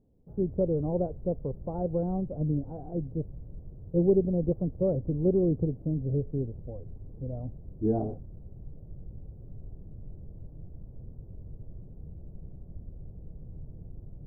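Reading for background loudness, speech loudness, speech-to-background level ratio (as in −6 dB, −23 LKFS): −47.0 LKFS, −30.0 LKFS, 17.0 dB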